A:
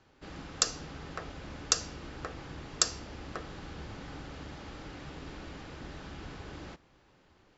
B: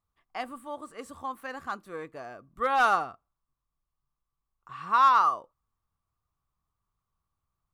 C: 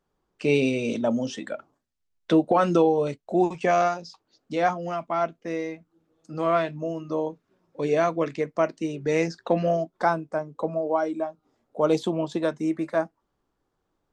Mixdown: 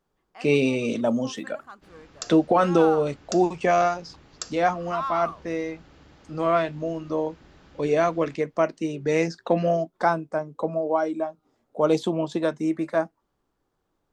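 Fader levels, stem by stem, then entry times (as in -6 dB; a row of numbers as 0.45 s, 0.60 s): -8.5 dB, -10.0 dB, +1.0 dB; 1.60 s, 0.00 s, 0.00 s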